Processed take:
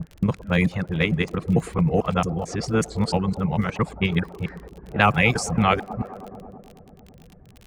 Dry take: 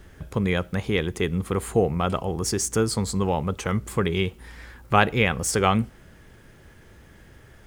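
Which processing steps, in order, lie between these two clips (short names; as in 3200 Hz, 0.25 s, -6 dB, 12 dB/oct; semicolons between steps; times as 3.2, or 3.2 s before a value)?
local time reversal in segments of 0.223 s; thirty-one-band EQ 160 Hz +10 dB, 400 Hz -6 dB, 3150 Hz -7 dB; band-limited delay 0.109 s, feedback 83%, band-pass 500 Hz, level -10.5 dB; on a send at -22 dB: reverb RT60 1.2 s, pre-delay 26 ms; on the sum: reverb removal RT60 0.56 s; low-pass opened by the level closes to 460 Hz, open at -17.5 dBFS; crackle 31/s -35 dBFS; bell 2800 Hz +5.5 dB 0.89 oct; in parallel at +1 dB: level quantiser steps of 11 dB; on the sum: gain -3.5 dB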